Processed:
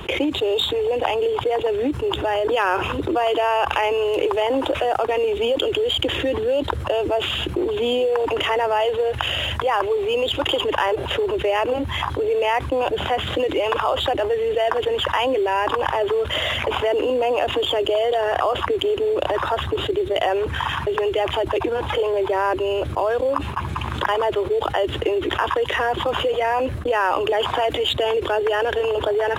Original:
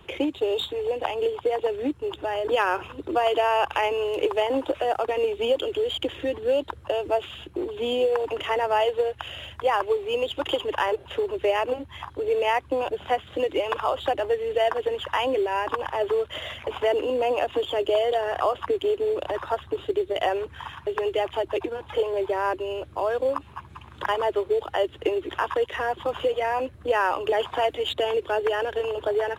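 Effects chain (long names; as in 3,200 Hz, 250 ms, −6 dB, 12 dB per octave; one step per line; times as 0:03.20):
noise gate with hold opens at −35 dBFS
envelope flattener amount 70%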